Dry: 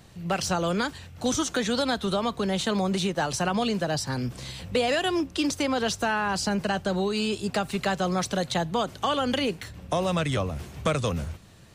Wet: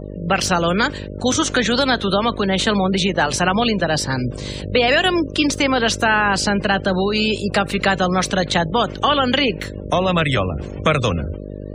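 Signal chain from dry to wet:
dynamic equaliser 2,100 Hz, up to +6 dB, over −41 dBFS, Q 0.85
hum with harmonics 50 Hz, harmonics 12, −38 dBFS −2 dB per octave
gate on every frequency bin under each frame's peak −30 dB strong
level +7 dB

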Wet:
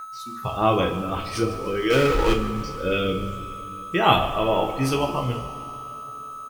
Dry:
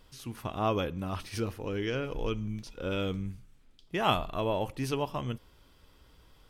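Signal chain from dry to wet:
noise reduction from a noise print of the clip's start 21 dB
steady tone 1,300 Hz −41 dBFS
in parallel at −8.5 dB: bit reduction 8 bits
0:01.90–0:02.33: on the sum: power curve on the samples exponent 0.5
on a send: echo with shifted repeats 151 ms, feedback 49%, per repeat −69 Hz, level −16 dB
on the sum: coupled-rooms reverb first 0.36 s, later 3.6 s, from −18 dB, DRR 0.5 dB
level +4 dB

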